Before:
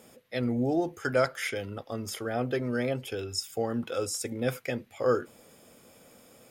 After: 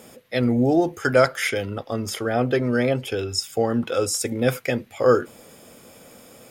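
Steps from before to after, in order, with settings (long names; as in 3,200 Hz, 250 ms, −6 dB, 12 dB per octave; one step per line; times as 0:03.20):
0:01.63–0:04.07: high-shelf EQ 9,100 Hz −5.5 dB
level +8.5 dB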